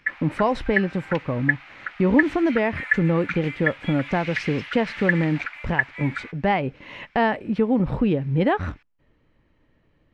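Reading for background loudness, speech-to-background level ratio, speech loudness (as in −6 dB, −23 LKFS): −28.5 LKFS, 4.5 dB, −24.0 LKFS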